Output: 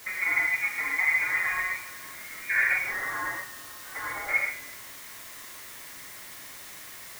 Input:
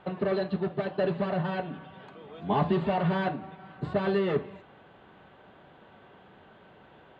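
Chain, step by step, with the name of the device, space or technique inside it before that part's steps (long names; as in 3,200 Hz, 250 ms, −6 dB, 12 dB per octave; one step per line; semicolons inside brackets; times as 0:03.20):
0:02.78–0:04.29: high-pass filter 1,100 Hz 12 dB per octave
scrambled radio voice (band-pass filter 340–2,900 Hz; voice inversion scrambler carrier 2,600 Hz; white noise bed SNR 13 dB)
reverb whose tail is shaped and stops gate 170 ms flat, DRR −2.5 dB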